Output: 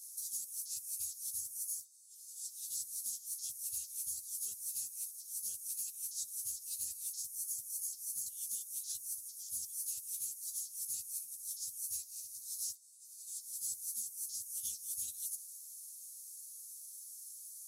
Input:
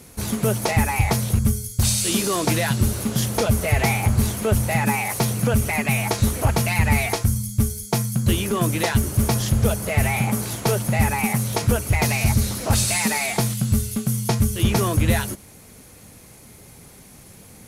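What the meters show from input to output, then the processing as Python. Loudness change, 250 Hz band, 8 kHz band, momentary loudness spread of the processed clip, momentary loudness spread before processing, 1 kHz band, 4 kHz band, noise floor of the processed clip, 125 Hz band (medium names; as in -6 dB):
-18.5 dB, under -40 dB, -11.0 dB, 9 LU, 3 LU, under -40 dB, -21.5 dB, -54 dBFS, under -40 dB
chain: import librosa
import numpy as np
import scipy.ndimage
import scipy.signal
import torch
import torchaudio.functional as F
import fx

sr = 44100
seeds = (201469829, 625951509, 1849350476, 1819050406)

y = scipy.signal.sosfilt(scipy.signal.cheby2(4, 50, 2300.0, 'highpass', fs=sr, output='sos'), x)
y = fx.over_compress(y, sr, threshold_db=-37.0, ratio=-0.5)
y = fx.ensemble(y, sr)
y = y * 10.0 ** (-2.0 / 20.0)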